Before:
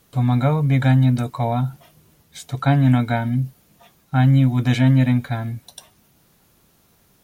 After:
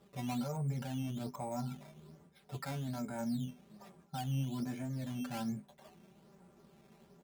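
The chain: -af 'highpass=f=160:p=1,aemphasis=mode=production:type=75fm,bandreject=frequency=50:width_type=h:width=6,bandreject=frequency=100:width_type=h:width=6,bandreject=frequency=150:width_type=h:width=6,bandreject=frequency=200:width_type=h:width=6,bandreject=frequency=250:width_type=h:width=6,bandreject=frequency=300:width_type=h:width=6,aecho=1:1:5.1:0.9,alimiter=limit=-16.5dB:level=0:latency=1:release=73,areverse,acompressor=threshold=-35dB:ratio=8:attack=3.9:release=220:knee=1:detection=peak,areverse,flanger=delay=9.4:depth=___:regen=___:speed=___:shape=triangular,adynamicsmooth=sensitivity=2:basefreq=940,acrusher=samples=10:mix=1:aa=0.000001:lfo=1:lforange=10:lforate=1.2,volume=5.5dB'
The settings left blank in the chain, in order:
5.1, 46, 0.8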